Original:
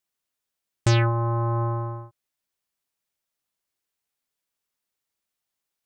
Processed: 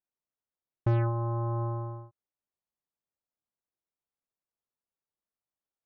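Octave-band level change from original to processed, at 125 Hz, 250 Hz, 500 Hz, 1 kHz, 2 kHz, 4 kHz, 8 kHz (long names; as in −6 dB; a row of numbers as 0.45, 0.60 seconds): −6.0 dB, −6.0 dB, −6.0 dB, −8.0 dB, −14.5 dB, below −25 dB, can't be measured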